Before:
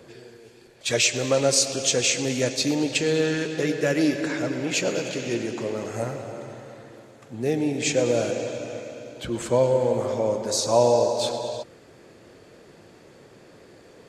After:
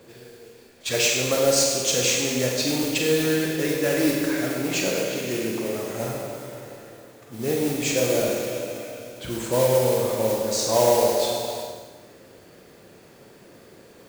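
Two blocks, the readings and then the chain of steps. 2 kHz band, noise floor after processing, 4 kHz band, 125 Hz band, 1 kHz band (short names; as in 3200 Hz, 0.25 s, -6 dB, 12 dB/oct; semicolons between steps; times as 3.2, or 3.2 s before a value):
+1.0 dB, -50 dBFS, +1.0 dB, 0.0 dB, +1.0 dB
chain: modulation noise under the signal 12 dB; Schroeder reverb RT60 1.2 s, combs from 32 ms, DRR 0 dB; gain -2.5 dB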